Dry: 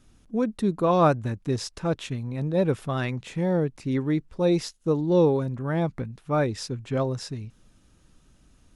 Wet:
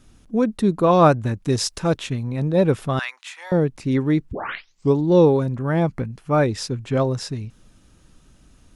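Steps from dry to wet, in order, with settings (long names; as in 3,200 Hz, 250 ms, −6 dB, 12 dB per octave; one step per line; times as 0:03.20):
0:01.45–0:01.97: high-shelf EQ 4,300 Hz +8 dB
0:02.99–0:03.52: high-pass filter 1,000 Hz 24 dB per octave
0:04.31: tape start 0.66 s
0:05.61–0:06.43: notch filter 3,700 Hz, Q 9.6
level +5.5 dB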